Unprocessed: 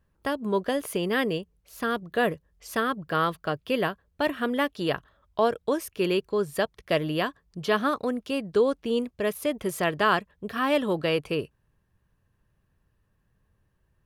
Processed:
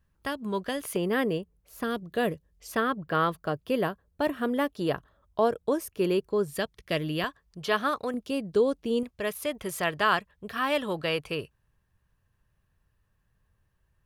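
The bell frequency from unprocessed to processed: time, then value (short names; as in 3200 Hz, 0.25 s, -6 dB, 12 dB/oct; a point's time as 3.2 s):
bell -6.5 dB 2.2 oct
470 Hz
from 0.96 s 4000 Hz
from 1.84 s 1300 Hz
from 2.72 s 8000 Hz
from 3.32 s 2700 Hz
from 6.48 s 780 Hz
from 7.24 s 230 Hz
from 8.14 s 1600 Hz
from 9.03 s 290 Hz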